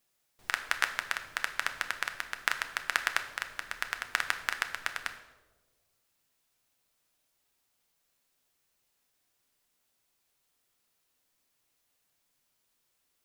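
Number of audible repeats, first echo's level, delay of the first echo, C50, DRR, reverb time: no echo audible, no echo audible, no echo audible, 10.5 dB, 6.5 dB, 1.4 s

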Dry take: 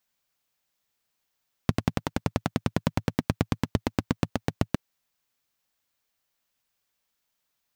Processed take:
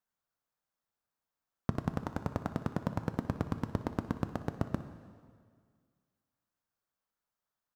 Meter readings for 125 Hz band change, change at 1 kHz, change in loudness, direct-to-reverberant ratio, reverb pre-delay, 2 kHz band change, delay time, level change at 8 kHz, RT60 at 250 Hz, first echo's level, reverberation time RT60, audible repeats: −7.0 dB, −5.5 dB, −7.0 dB, 9.0 dB, 4 ms, −10.0 dB, 61 ms, −15.0 dB, 2.0 s, −17.5 dB, 1.9 s, 1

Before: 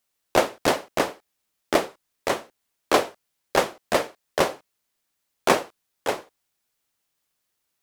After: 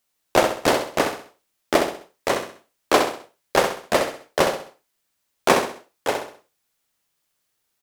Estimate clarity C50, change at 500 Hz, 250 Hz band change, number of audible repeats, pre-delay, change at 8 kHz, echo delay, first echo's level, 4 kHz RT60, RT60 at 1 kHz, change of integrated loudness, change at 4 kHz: no reverb audible, +3.0 dB, +3.0 dB, 4, no reverb audible, +3.0 dB, 65 ms, −6.5 dB, no reverb audible, no reverb audible, +2.5 dB, +3.0 dB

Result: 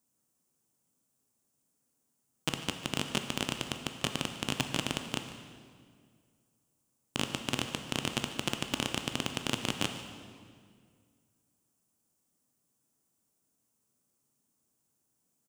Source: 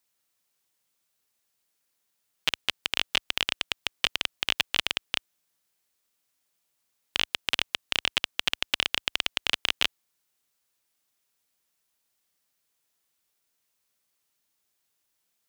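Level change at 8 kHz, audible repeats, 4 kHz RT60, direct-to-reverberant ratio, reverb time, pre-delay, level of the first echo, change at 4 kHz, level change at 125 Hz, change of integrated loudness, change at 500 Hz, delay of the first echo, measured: +0.5 dB, 1, 1.6 s, 5.5 dB, 2.0 s, 12 ms, −17.0 dB, −9.0 dB, +11.0 dB, −6.5 dB, +3.5 dB, 147 ms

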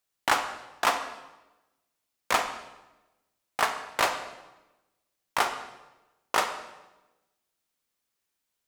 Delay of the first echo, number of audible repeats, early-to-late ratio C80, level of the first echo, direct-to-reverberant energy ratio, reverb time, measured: no echo audible, no echo audible, 10.5 dB, no echo audible, 7.0 dB, 1.1 s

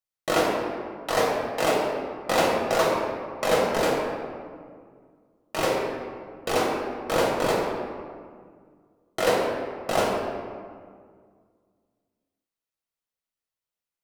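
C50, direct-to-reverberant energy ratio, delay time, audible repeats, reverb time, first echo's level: 0.5 dB, −4.0 dB, no echo audible, no echo audible, 1.9 s, no echo audible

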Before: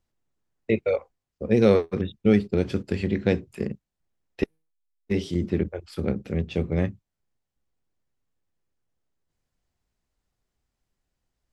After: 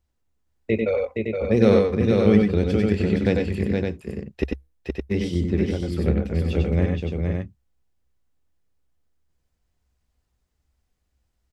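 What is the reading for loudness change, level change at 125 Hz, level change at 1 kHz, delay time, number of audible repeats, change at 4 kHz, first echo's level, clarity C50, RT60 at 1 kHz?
+3.5 dB, +5.5 dB, +3.5 dB, 94 ms, 3, +3.0 dB, −3.5 dB, no reverb audible, no reverb audible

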